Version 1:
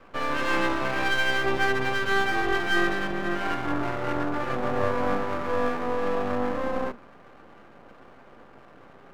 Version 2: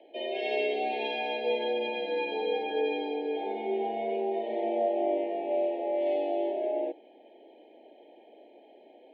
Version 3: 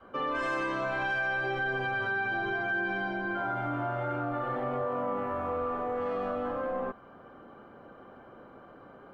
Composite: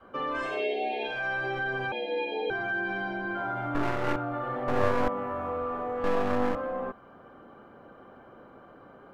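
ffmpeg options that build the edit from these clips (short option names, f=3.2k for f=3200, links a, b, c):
-filter_complex "[1:a]asplit=2[a][b];[0:a]asplit=3[c][d][e];[2:a]asplit=6[f][g][h][i][j][k];[f]atrim=end=0.65[l];[a]atrim=start=0.41:end=1.26[m];[g]atrim=start=1.02:end=1.922[n];[b]atrim=start=1.918:end=2.502[o];[h]atrim=start=2.498:end=3.752[p];[c]atrim=start=3.748:end=4.162[q];[i]atrim=start=4.158:end=4.682[r];[d]atrim=start=4.678:end=5.082[s];[j]atrim=start=5.078:end=6.042[t];[e]atrim=start=6.038:end=6.552[u];[k]atrim=start=6.548[v];[l][m]acrossfade=d=0.24:c1=tri:c2=tri[w];[w][n]acrossfade=d=0.24:c1=tri:c2=tri[x];[x][o]acrossfade=d=0.004:c1=hsin:c2=hsin[y];[y][p]acrossfade=d=0.004:c1=hsin:c2=hsin[z];[z][q]acrossfade=d=0.004:c1=hsin:c2=hsin[aa];[aa][r]acrossfade=d=0.004:c1=hsin:c2=hsin[ab];[ab][s]acrossfade=d=0.004:c1=hsin:c2=hsin[ac];[ac][t]acrossfade=d=0.004:c1=hsin:c2=hsin[ad];[ad][u]acrossfade=d=0.004:c1=hsin:c2=hsin[ae];[ae][v]acrossfade=d=0.004:c1=hsin:c2=hsin"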